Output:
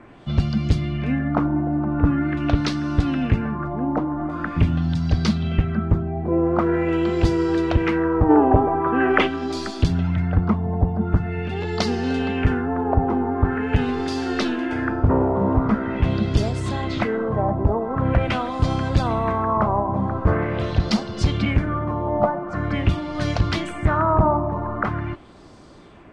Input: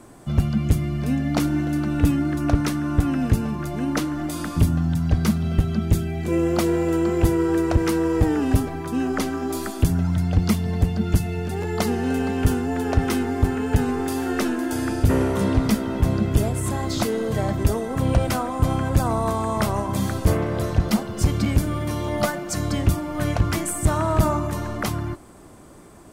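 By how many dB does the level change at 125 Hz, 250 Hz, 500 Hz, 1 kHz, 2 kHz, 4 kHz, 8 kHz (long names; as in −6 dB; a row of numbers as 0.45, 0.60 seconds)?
0.0, +0.5, +2.0, +4.5, +3.5, +1.5, −11.5 decibels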